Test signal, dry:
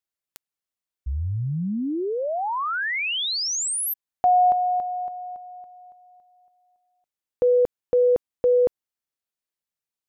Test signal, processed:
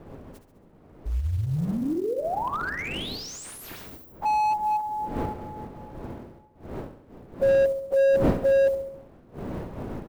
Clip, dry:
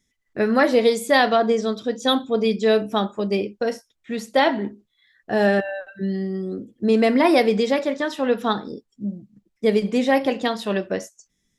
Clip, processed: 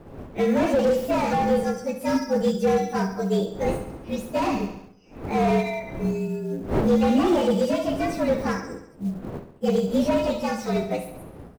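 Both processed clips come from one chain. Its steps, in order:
partials spread apart or drawn together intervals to 115%
wind on the microphone 390 Hz −37 dBFS
on a send: repeating echo 68 ms, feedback 56%, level −10.5 dB
on the sum: floating-point word with a short mantissa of 4 bits
slew-rate limiting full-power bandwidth 73 Hz

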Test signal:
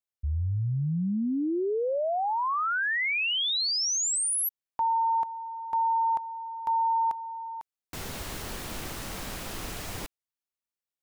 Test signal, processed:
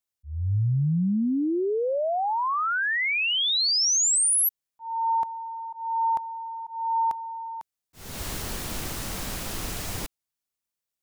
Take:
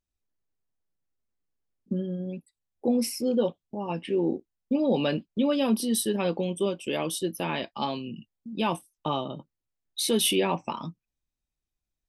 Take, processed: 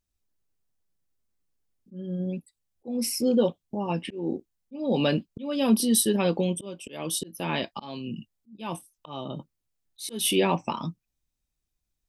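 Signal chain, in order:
volume swells 321 ms
bass and treble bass +3 dB, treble +4 dB
level +2 dB

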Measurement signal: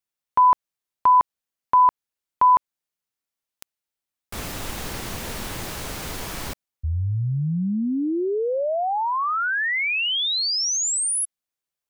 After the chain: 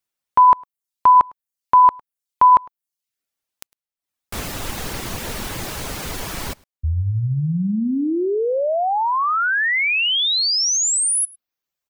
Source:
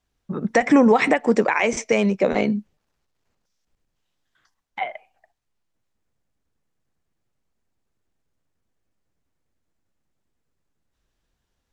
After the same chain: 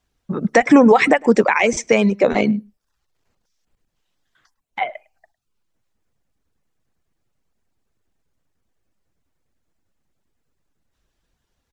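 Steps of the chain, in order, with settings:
single-tap delay 105 ms −16 dB
reverb reduction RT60 0.51 s
level +4.5 dB

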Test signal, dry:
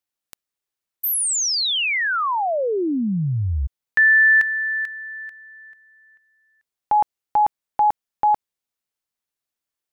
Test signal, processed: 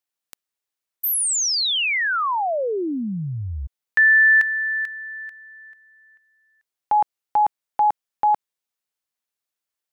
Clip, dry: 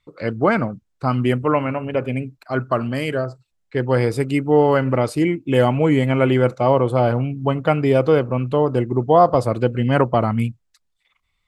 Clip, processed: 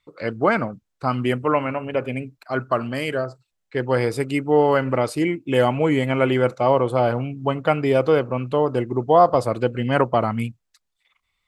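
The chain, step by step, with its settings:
low-shelf EQ 270 Hz −7 dB

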